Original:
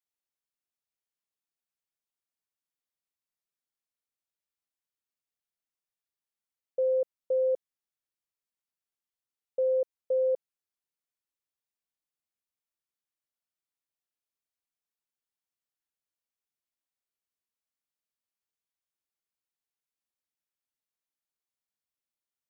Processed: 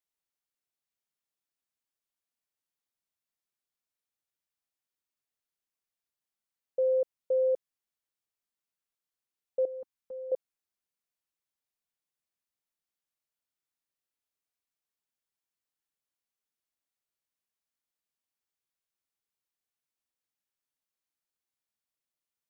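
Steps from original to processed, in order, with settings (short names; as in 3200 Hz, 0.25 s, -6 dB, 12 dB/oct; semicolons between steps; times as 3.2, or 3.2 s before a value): 9.65–10.32 band shelf 510 Hz -14 dB 1.1 oct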